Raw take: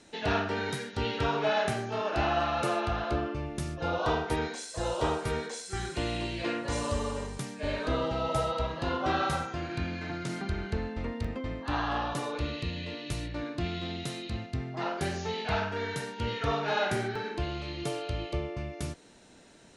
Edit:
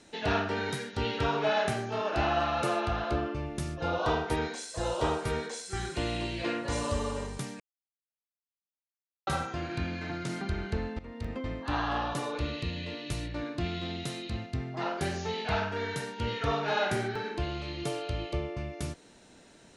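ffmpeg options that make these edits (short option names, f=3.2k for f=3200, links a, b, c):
-filter_complex "[0:a]asplit=4[a][b][c][d];[a]atrim=end=7.6,asetpts=PTS-STARTPTS,afade=t=out:st=7.596:d=0.004:c=hsin[e];[b]atrim=start=7.6:end=9.27,asetpts=PTS-STARTPTS,volume=0[f];[c]atrim=start=9.27:end=10.99,asetpts=PTS-STARTPTS,afade=t=in:d=0.004:c=hsin,afade=t=out:st=1.716:d=0.004:c=hsin:silence=0.141254[g];[d]atrim=start=10.99,asetpts=PTS-STARTPTS,afade=t=in:d=0.39:silence=0.141254[h];[e][f][g][h]concat=n=4:v=0:a=1"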